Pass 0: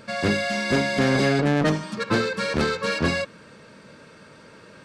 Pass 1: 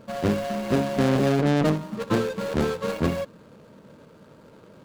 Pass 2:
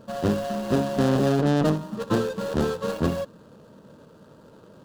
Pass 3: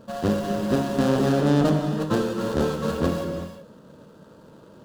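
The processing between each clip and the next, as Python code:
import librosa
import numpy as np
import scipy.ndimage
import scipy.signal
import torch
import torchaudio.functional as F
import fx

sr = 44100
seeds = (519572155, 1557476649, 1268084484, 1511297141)

y1 = scipy.signal.medfilt(x, 25)
y2 = fx.peak_eq(y1, sr, hz=2200.0, db=-12.0, octaves=0.32)
y3 = fx.rev_gated(y2, sr, seeds[0], gate_ms=400, shape='flat', drr_db=4.5)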